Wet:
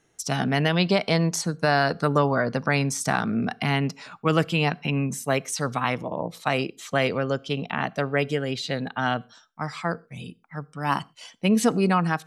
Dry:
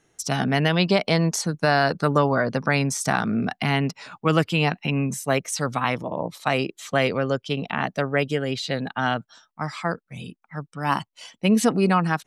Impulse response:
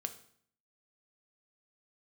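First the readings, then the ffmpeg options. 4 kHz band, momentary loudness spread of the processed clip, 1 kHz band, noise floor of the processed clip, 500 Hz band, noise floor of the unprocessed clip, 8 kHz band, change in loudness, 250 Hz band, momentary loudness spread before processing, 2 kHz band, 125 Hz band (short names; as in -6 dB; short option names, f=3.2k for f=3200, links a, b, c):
-1.5 dB, 9 LU, -1.5 dB, -61 dBFS, -1.5 dB, -73 dBFS, -1.5 dB, -1.5 dB, -1.5 dB, 9 LU, -1.5 dB, -1.5 dB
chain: -filter_complex "[0:a]asplit=2[a][b];[1:a]atrim=start_sample=2205,afade=t=out:st=0.19:d=0.01,atrim=end_sample=8820[c];[b][c]afir=irnorm=-1:irlink=0,volume=-10dB[d];[a][d]amix=inputs=2:normalize=0,volume=-3.5dB"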